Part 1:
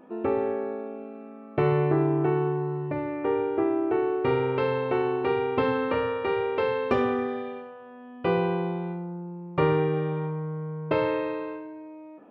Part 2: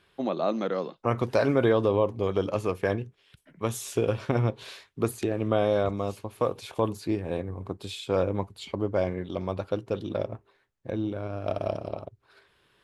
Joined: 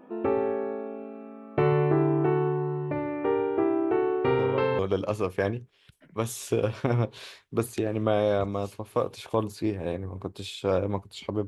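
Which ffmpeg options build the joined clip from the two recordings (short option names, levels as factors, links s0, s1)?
-filter_complex "[1:a]asplit=2[s0][s1];[0:a]apad=whole_dur=11.47,atrim=end=11.47,atrim=end=4.792[s2];[s1]atrim=start=2.238:end=8.92[s3];[s0]atrim=start=1.83:end=2.24,asetpts=PTS-STARTPTS,volume=0.335,afade=t=in:d=0.004:c=hsin,afade=t=out:st=0.406:d=0.004:c=hsin,adelay=4380[s4];[s2][s3]acrossfade=d=0.004:c1=hsin:c2=hsin[s5];[s5][s4]amix=inputs=2:normalize=0"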